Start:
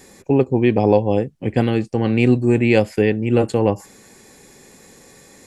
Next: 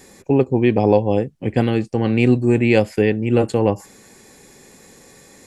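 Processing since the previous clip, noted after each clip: no audible change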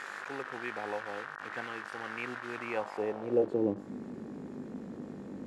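one-bit delta coder 64 kbps, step -21 dBFS; mains buzz 50 Hz, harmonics 37, -32 dBFS -1 dB/octave; band-pass sweep 1.5 kHz -> 240 Hz, 2.53–3.84 s; trim -7 dB

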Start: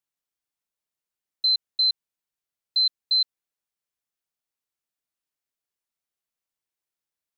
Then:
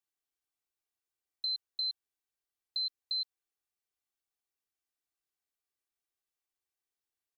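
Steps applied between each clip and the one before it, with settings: comb 2.6 ms; trim -5.5 dB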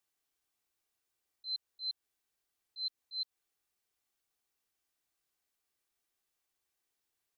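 slow attack 262 ms; trim +6.5 dB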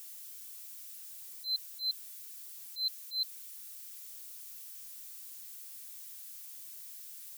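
zero-crossing glitches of -47 dBFS; trim +4 dB

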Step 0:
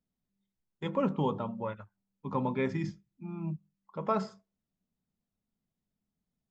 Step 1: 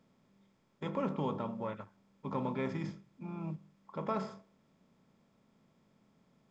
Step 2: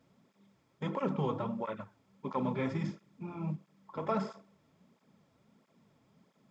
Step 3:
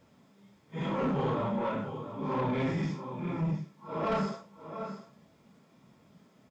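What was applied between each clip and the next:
spectral levelling over time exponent 0.6; trim -7.5 dB
cancelling through-zero flanger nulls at 1.5 Hz, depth 5.6 ms; trim +5 dB
phase randomisation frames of 200 ms; delay 691 ms -12.5 dB; saturation -31.5 dBFS, distortion -13 dB; trim +7 dB

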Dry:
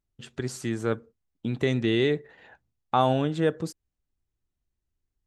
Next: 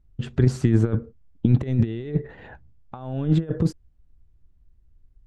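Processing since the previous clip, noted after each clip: compressor with a negative ratio -30 dBFS, ratio -0.5; RIAA curve playback; trim +2 dB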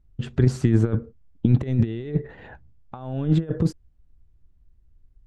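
no audible change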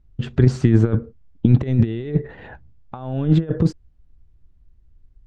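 low-pass 6.1 kHz 12 dB/octave; trim +4 dB

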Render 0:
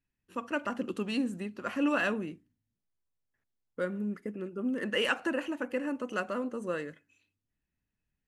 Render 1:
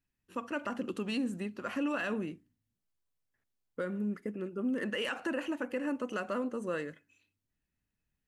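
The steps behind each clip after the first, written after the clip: peak limiter -25 dBFS, peak gain reduction 9.5 dB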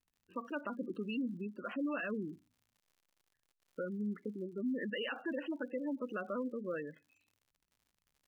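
spectral gate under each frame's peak -15 dB strong; crackle 100 per s -55 dBFS; trim -3.5 dB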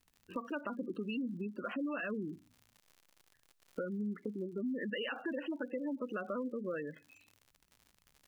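compression 2.5:1, threshold -52 dBFS, peak gain reduction 12.5 dB; trim +11 dB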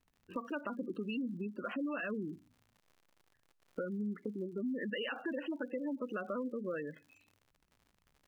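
tape noise reduction on one side only decoder only

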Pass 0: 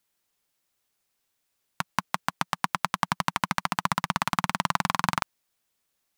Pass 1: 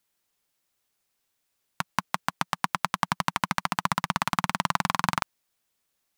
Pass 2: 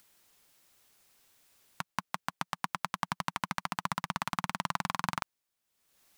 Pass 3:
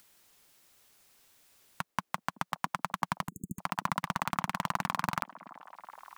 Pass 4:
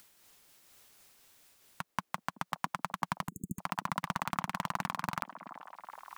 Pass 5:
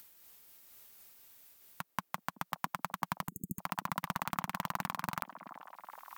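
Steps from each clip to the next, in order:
no audible change
upward compressor, threshold -42 dBFS; trim -7.5 dB
overload inside the chain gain 17.5 dB; repeats whose band climbs or falls 378 ms, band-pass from 330 Hz, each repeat 0.7 oct, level -10.5 dB; spectral selection erased 3.28–3.59 s, 440–6500 Hz; trim +2.5 dB
in parallel at +1.5 dB: peak limiter -24.5 dBFS, peak gain reduction 9.5 dB; on the sum: random flutter of the level, depth 50%; trim -3 dB
peaking EQ 15 kHz +13.5 dB 0.43 oct; trim -2 dB

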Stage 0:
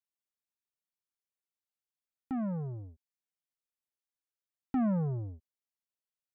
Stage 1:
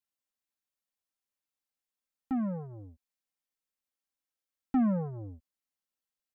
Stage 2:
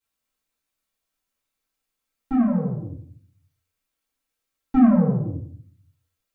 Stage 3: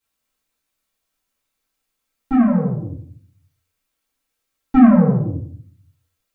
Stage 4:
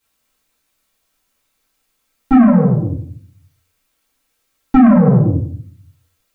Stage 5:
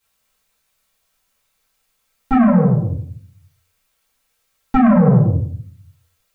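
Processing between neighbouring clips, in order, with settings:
comb 3.8 ms, depth 55%
reverberation RT60 0.50 s, pre-delay 3 ms, DRR -12 dB; trim -1 dB
dynamic bell 2 kHz, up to +5 dB, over -41 dBFS, Q 0.81; trim +5 dB
peak limiter -11.5 dBFS, peak gain reduction 10 dB; trim +9 dB
peaking EQ 300 Hz -13.5 dB 0.39 oct

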